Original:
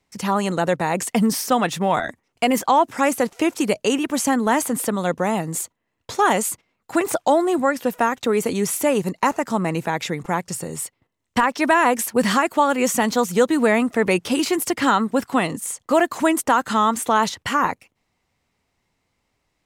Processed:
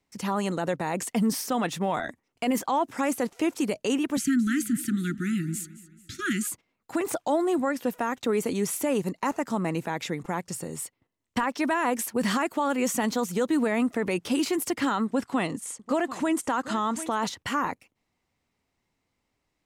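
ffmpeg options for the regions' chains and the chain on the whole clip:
-filter_complex "[0:a]asettb=1/sr,asplit=3[a][b][c];[a]atrim=end=4.174[d];[b]atrim=start=4.17:end=6.47,asetpts=PTS-STARTPTS,afade=t=in:d=0.004:c=qsin,afade=t=out:st=2.296:d=0.004:c=qsin,asuperstop=centerf=690:order=20:qfactor=0.72,bass=f=250:g=5,treble=f=4k:g=-2,aecho=1:1:217|434|651|868:0.133|0.0587|0.0258|0.0114,atrim=end_sample=101430[e];[c]atrim=start=6.466[f];[d][e]acrossfade=d=0.004:c1=hsin:c2=qsin[g];[g][f]acrossfade=d=0.004:c1=qsin:c2=hsin,asettb=1/sr,asplit=3[h][i][j];[h]atrim=end=15.054[k];[i]atrim=start=15.05:end=17.27,asetpts=PTS-STARTPTS,afade=t=in:d=0.004:c=qsin,afade=t=out:st=2.216:d=0.004:c=qsin,lowpass=10k,aecho=1:1:743:0.141,atrim=end_sample=97902[l];[j]atrim=start=17.266[m];[k][l]acrossfade=d=0.004:c1=hsin:c2=qsin[n];[n][m]acrossfade=d=0.004:c1=qsin:c2=hsin,equalizer=f=280:t=o:w=0.8:g=3.5,alimiter=limit=-10.5dB:level=0:latency=1:release=16,volume=-6.5dB"

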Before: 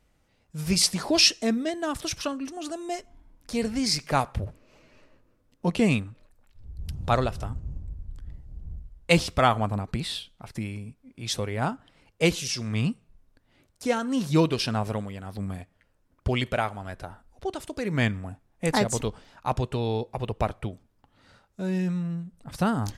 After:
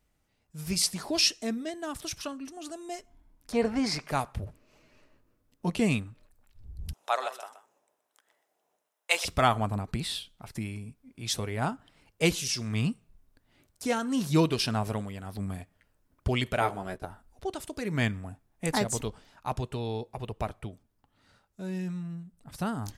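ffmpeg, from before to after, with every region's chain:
-filter_complex "[0:a]asettb=1/sr,asplit=3[a][b][c];[a]atrim=end=3.524[d];[b]atrim=start=3.52:end=4.08,asetpts=PTS-STARTPTS,afade=t=in:d=0.004:c=qsin,afade=t=out:st=0.556:d=0.004:c=qsin,lowpass=f=3.2k:p=1,equalizer=f=860:t=o:w=2.6:g=14.5[e];[c]atrim=start=4.076[f];[d][e]acrossfade=d=0.004:c1=hsin:c2=qsin[g];[g][f]acrossfade=d=0.004:c1=qsin:c2=hsin,asettb=1/sr,asplit=3[h][i][j];[h]atrim=end=6.934[k];[i]atrim=start=6.93:end=9.25,asetpts=PTS-STARTPTS,afade=t=in:d=0.004:c=qsin,afade=t=out:st=2.316:d=0.004:c=qsin,highpass=f=560:w=0.5412,highpass=f=560:w=1.3066,bandreject=f=4.5k:w=7.6,aecho=1:1:125:0.266,atrim=end_sample=102312[l];[j]atrim=start=9.246[m];[k][l]acrossfade=d=0.004:c1=hsin:c2=qsin[n];[n][m]acrossfade=d=0.004:c1=qsin:c2=hsin,asettb=1/sr,asplit=3[o][p][q];[o]atrim=end=16.604[r];[p]atrim=start=16.6:end=17.05,asetpts=PTS-STARTPTS,afade=t=in:d=0.004:c=qsin,afade=t=out:st=0.446:d=0.004:c=qsin,agate=range=-15dB:threshold=-44dB:ratio=16:release=100:detection=peak,equalizer=f=410:t=o:w=1.2:g=9,asplit=2[s][t];[t]adelay=16,volume=-5dB[u];[s][u]amix=inputs=2:normalize=0,atrim=end_sample=19845[v];[q]atrim=start=17.046[w];[r][v]acrossfade=d=0.004:c1=hsin:c2=qsin[x];[x][w]acrossfade=d=0.004:c1=qsin:c2=hsin,highshelf=f=9.5k:g=9,bandreject=f=520:w=13,dynaudnorm=f=320:g=31:m=11.5dB,volume=-7dB"

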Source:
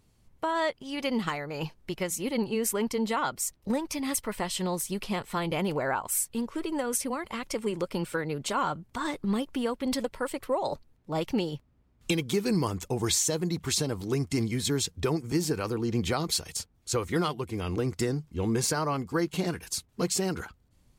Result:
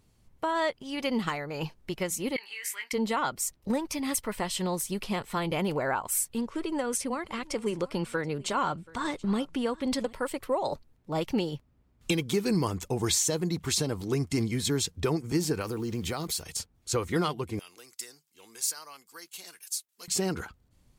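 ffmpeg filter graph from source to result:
-filter_complex "[0:a]asettb=1/sr,asplit=3[a][b][c];[a]atrim=end=2.364[d];[b]atrim=start=2.36:end=2.93,asetpts=PTS-STARTPTS,afade=t=in:d=0.004:c=qsin,afade=t=out:st=0.566:d=0.004:c=qsin,acompressor=threshold=-31dB:ratio=4:attack=3.2:release=140:knee=1:detection=peak,highpass=f=2k:t=q:w=4.8,asplit=2[e][f];[f]adelay=20,volume=-5dB[g];[e][g]amix=inputs=2:normalize=0,atrim=end_sample=25137[h];[c]atrim=start=2.926[i];[d][h]acrossfade=d=0.004:c1=hsin:c2=qsin[j];[j][i]acrossfade=d=0.004:c1=qsin:c2=hsin,asettb=1/sr,asplit=3[k][l][m];[k]atrim=end=6.384[n];[l]atrim=start=6.38:end=10.13,asetpts=PTS-STARTPTS,afade=t=in:d=0.004:c=qsin,afade=t=out:st=3.746:d=0.004:c=qsin,lowpass=10k,aecho=1:1:730:0.075,atrim=end_sample=165375[o];[m]atrim=start=10.126[p];[n][o]acrossfade=d=0.004:c1=hsin:c2=qsin[q];[q][p]acrossfade=d=0.004:c1=qsin:c2=hsin,asettb=1/sr,asplit=3[r][s][t];[r]atrim=end=15.614[u];[s]atrim=start=15.61:end=16.43,asetpts=PTS-STARTPTS,afade=t=in:d=0.004:c=qsin,afade=t=out:st=0.816:d=0.004:c=qsin,highshelf=f=9.9k:g=11,acompressor=threshold=-30dB:ratio=2.5:attack=3.2:release=140:knee=1:detection=peak,acrusher=bits=8:mix=0:aa=0.5[v];[t]atrim=start=16.426[w];[u][v]acrossfade=d=0.004:c1=hsin:c2=qsin[x];[x][w]acrossfade=d=0.004:c1=qsin:c2=hsin,asettb=1/sr,asplit=3[y][z][aa];[y]atrim=end=17.594[ab];[z]atrim=start=17.59:end=20.08,asetpts=PTS-STARTPTS,afade=t=in:d=0.004:c=qsin,afade=t=out:st=2.486:d=0.004:c=qsin,highpass=f=180:p=1,aderivative[ac];[aa]atrim=start=20.076[ad];[ab][ac]acrossfade=d=0.004:c1=hsin:c2=qsin[ae];[ae][ad]acrossfade=d=0.004:c1=qsin:c2=hsin"

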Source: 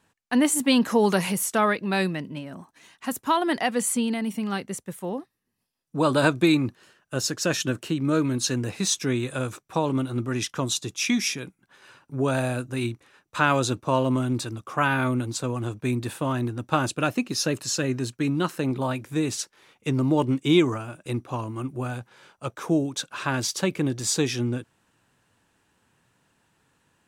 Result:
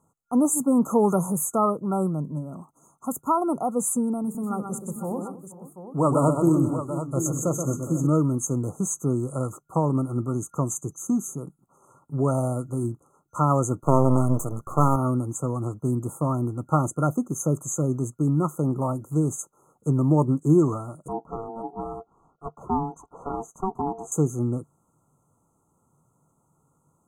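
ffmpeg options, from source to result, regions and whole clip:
-filter_complex "[0:a]asettb=1/sr,asplit=3[a][b][c];[a]atrim=end=4.224[d];[b]atrim=start=4.22:end=8.07,asetpts=PTS-STARTPTS,afade=t=in:d=0.004:c=qsin,afade=t=out:st=3.846:d=0.004:c=qsin,bandreject=f=50:t=h:w=6,bandreject=f=100:t=h:w=6,bandreject=f=150:t=h:w=6,bandreject=f=200:t=h:w=6,bandreject=f=250:t=h:w=6,bandreject=f=300:t=h:w=6,bandreject=f=350:t=h:w=6,bandreject=f=400:t=h:w=6,bandreject=f=450:t=h:w=6,aecho=1:1:127|221|477|495|736:0.473|0.133|0.106|0.141|0.299,atrim=end_sample=169785[e];[c]atrim=start=8.066[f];[d][e]acrossfade=d=0.004:c1=hsin:c2=qsin[g];[g][f]acrossfade=d=0.004:c1=qsin:c2=hsin,asettb=1/sr,asplit=3[h][i][j];[h]atrim=end=13.834[k];[i]atrim=start=13.83:end=14.96,asetpts=PTS-STARTPTS,afade=t=in:d=0.004:c=qsin,afade=t=out:st=1.126:d=0.004:c=qsin,aeval=exprs='max(val(0),0)':c=same,acontrast=67[l];[j]atrim=start=14.956[m];[k][l]acrossfade=d=0.004:c1=hsin:c2=qsin[n];[n][m]acrossfade=d=0.004:c1=qsin:c2=hsin,asettb=1/sr,asplit=3[o][p][q];[o]atrim=end=21.084[r];[p]atrim=start=21.08:end=24.12,asetpts=PTS-STARTPTS,afade=t=in:d=0.004:c=qsin,afade=t=out:st=3.036:d=0.004:c=qsin,lowpass=f=1.2k:p=1,aeval=exprs='val(0)*sin(2*PI*570*n/s)':c=same[s];[q]atrim=start=24.116[t];[r][s]acrossfade=d=0.004:c1=hsin:c2=qsin[u];[u][t]acrossfade=d=0.004:c1=qsin:c2=hsin,afftfilt=real='re*(1-between(b*sr/4096,1400,6200))':imag='im*(1-between(b*sr/4096,1400,6200))':win_size=4096:overlap=0.75,equalizer=f=150:t=o:w=0.26:g=9"

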